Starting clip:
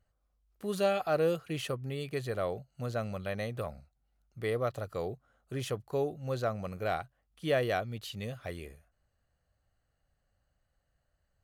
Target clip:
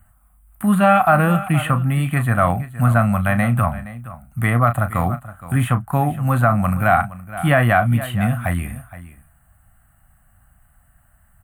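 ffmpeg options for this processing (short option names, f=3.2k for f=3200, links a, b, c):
-filter_complex "[0:a]firequalizer=gain_entry='entry(240,0);entry(430,-27);entry(690,-2);entry(1300,2);entry(5200,-26);entry(8600,9)':delay=0.05:min_phase=1,acrossover=split=300|3600[a][b][c];[c]acompressor=threshold=-60dB:ratio=6[d];[a][b][d]amix=inputs=3:normalize=0,asplit=2[e][f];[f]adelay=34,volume=-11dB[g];[e][g]amix=inputs=2:normalize=0,aecho=1:1:469:0.158,alimiter=level_in=24dB:limit=-1dB:release=50:level=0:latency=1,volume=-2.5dB"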